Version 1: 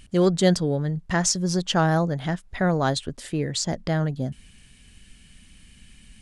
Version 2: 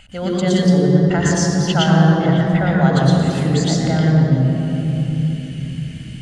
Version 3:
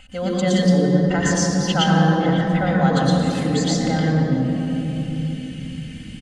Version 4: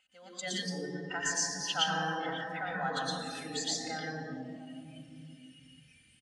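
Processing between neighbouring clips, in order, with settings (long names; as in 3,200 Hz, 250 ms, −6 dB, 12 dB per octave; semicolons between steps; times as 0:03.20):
downward compressor 1.5 to 1, threshold −42 dBFS, peak gain reduction 10.5 dB; convolution reverb RT60 3.5 s, pre-delay 88 ms, DRR −2 dB; level +1 dB
comb filter 3.9 ms, depth 56%; level −2.5 dB
high-pass filter 1,300 Hz 6 dB per octave; noise reduction from a noise print of the clip's start 14 dB; level −6.5 dB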